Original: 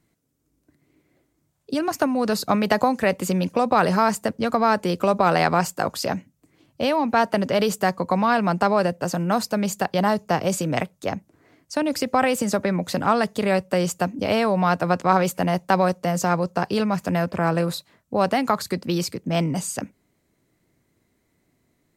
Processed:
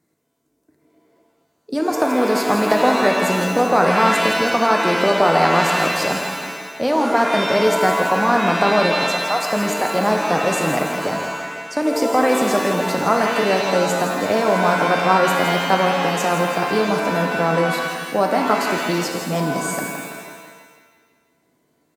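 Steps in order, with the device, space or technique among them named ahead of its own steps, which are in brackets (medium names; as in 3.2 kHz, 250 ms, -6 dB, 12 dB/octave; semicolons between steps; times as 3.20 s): 9.04–9.44 s: high-pass 520 Hz 24 dB/octave; peaking EQ 2.9 kHz -7.5 dB 0.65 oct; filter by subtraction (in parallel: low-pass 340 Hz 12 dB/octave + polarity flip); on the sum: feedback delay 165 ms, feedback 55%, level -9 dB; pitch-shifted reverb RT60 1.1 s, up +7 st, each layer -2 dB, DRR 4.5 dB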